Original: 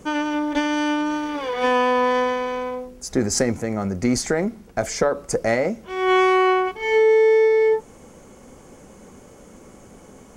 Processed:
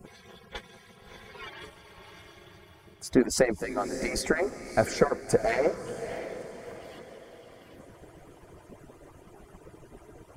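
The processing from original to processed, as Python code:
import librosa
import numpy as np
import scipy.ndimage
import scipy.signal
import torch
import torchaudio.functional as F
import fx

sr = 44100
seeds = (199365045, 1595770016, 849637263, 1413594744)

p1 = fx.hpss_only(x, sr, part='percussive')
p2 = fx.peak_eq(p1, sr, hz=6500.0, db=-10.5, octaves=0.79)
y = p2 + fx.echo_diffused(p2, sr, ms=639, feedback_pct=42, wet_db=-11.0, dry=0)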